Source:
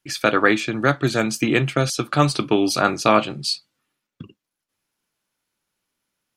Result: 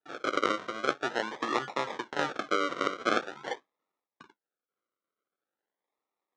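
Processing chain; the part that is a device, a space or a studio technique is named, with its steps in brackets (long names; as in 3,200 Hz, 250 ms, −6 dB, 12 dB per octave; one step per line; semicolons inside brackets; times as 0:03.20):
circuit-bent sampling toy (sample-and-hold swept by an LFO 40×, swing 60% 0.45 Hz; loudspeaker in its box 550–5,300 Hz, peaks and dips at 660 Hz −5 dB, 1,300 Hz +5 dB, 2,600 Hz −6 dB, 4,700 Hz −8 dB)
level −5.5 dB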